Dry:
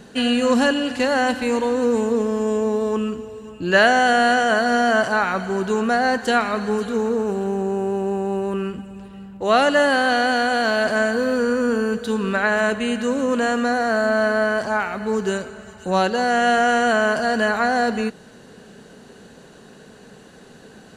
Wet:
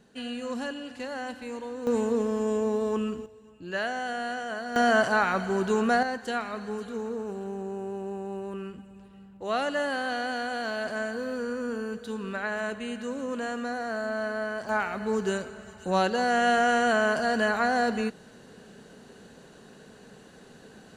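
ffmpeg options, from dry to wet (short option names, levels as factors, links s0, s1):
-af "asetnsamples=n=441:p=0,asendcmd='1.87 volume volume -6dB;3.26 volume volume -16dB;4.76 volume volume -4dB;6.03 volume volume -12dB;14.69 volume volume -5.5dB',volume=0.158"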